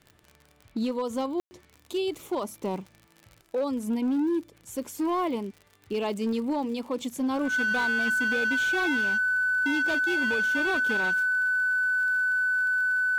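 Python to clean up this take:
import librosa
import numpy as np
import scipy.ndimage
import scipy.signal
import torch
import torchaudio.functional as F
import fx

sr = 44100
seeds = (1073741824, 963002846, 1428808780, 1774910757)

y = fx.fix_declip(x, sr, threshold_db=-22.5)
y = fx.fix_declick_ar(y, sr, threshold=6.5)
y = fx.notch(y, sr, hz=1500.0, q=30.0)
y = fx.fix_ambience(y, sr, seeds[0], print_start_s=0.12, print_end_s=0.62, start_s=1.4, end_s=1.51)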